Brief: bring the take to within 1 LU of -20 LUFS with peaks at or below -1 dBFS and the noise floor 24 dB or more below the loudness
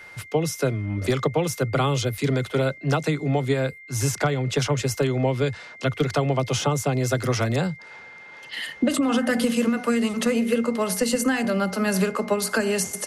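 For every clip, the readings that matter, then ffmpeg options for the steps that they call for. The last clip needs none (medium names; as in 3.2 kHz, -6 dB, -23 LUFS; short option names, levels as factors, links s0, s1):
steady tone 2.1 kHz; tone level -42 dBFS; loudness -24.0 LUFS; peak level -11.0 dBFS; loudness target -20.0 LUFS
-> -af "bandreject=f=2100:w=30"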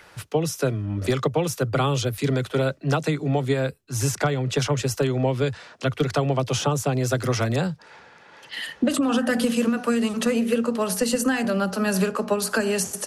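steady tone not found; loudness -24.0 LUFS; peak level -10.5 dBFS; loudness target -20.0 LUFS
-> -af "volume=1.58"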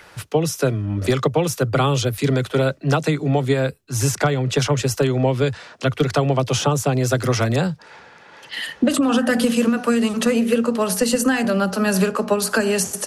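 loudness -20.0 LUFS; peak level -6.5 dBFS; noise floor -47 dBFS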